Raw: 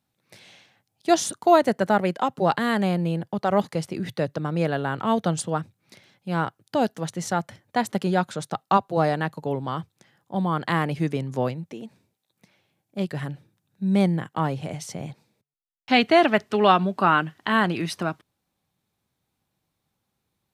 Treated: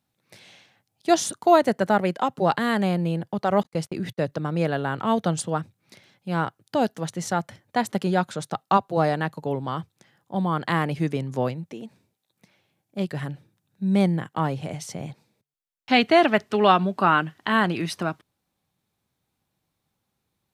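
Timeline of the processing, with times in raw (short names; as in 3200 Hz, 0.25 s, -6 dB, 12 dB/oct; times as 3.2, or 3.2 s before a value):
3.63–4.32 gate -40 dBFS, range -45 dB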